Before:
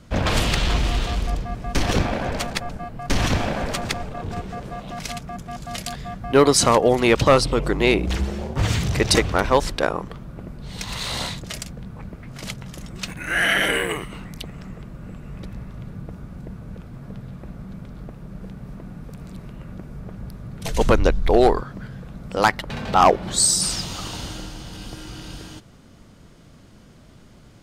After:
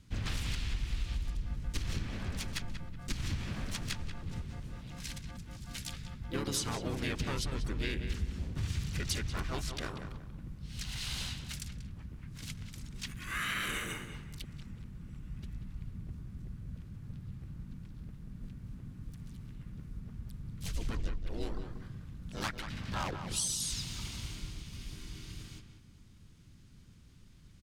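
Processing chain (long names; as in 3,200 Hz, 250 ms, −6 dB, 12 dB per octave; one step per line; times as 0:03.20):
guitar amp tone stack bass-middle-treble 6-0-2
pitch-shifted copies added −5 semitones −2 dB, +4 semitones −6 dB
downward compressor, threshold −34 dBFS, peak gain reduction 10.5 dB
feedback echo with a low-pass in the loop 186 ms, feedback 31%, low-pass 3,000 Hz, level −8 dB
level +3 dB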